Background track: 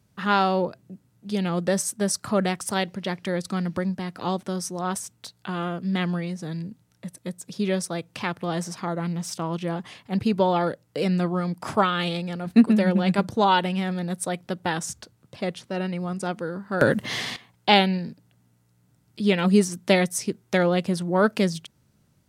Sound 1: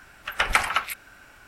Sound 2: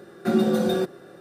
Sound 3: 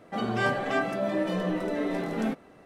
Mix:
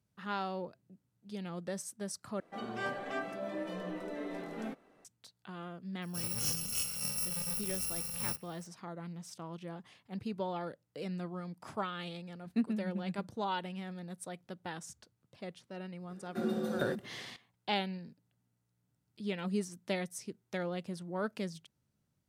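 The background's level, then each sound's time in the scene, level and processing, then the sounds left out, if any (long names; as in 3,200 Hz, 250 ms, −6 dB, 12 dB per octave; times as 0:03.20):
background track −16 dB
0:02.40: overwrite with 3 −10.5 dB + parametric band 86 Hz −9 dB 1.5 octaves
0:06.02: mix in 3 −8.5 dB + samples in bit-reversed order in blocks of 128 samples
0:16.10: mix in 2 −13.5 dB
not used: 1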